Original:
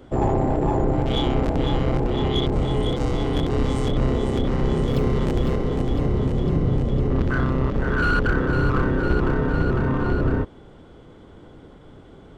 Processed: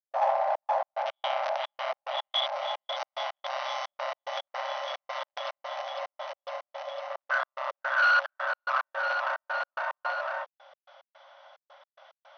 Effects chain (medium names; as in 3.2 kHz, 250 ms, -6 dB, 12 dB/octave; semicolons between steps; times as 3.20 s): FFT band-pass 530–6200 Hz; trance gate ".xxx.x.x" 109 bpm -60 dB; trim +1.5 dB